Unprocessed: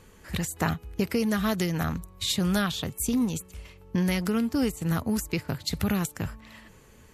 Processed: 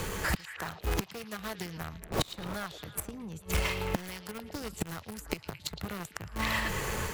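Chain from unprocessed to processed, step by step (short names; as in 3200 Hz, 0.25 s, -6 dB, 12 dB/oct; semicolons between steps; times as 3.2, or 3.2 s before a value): 2.01–2.53 wind noise 380 Hz -28 dBFS; flipped gate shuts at -25 dBFS, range -34 dB; bell 250 Hz -9.5 dB 0.31 oct; in parallel at -3 dB: companded quantiser 4-bit; on the sum: wavefolder -26.5 dBFS; on a send: delay with a stepping band-pass 0.111 s, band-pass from 3700 Hz, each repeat -0.7 oct, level -10 dB; on the sum: AGC gain up to 6 dB; dynamic EQ 1100 Hz, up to +5 dB, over -55 dBFS, Q 0.76; three-band squash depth 70%; gain +7 dB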